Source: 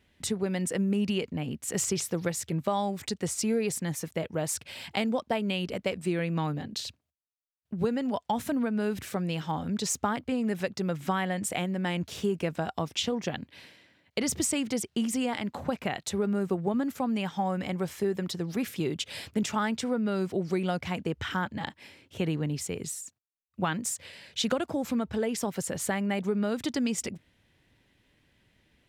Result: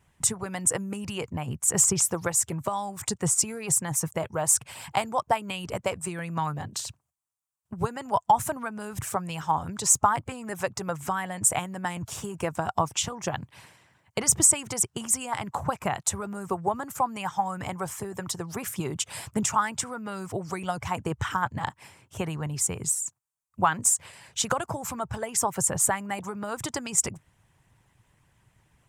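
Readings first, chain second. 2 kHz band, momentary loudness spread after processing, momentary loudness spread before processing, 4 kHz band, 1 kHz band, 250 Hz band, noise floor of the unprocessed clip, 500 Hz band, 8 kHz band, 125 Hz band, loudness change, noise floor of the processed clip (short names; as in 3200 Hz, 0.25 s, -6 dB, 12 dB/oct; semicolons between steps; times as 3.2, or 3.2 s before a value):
+1.5 dB, 11 LU, 6 LU, -1.0 dB, +7.0 dB, -5.5 dB, -75 dBFS, -1.5 dB, +11.0 dB, 0.0 dB, +3.5 dB, -71 dBFS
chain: harmonic-percussive split harmonic -11 dB; ten-band EQ 125 Hz +9 dB, 250 Hz -8 dB, 500 Hz -5 dB, 1000 Hz +9 dB, 2000 Hz -4 dB, 4000 Hz -10 dB, 8000 Hz +9 dB; gain +6 dB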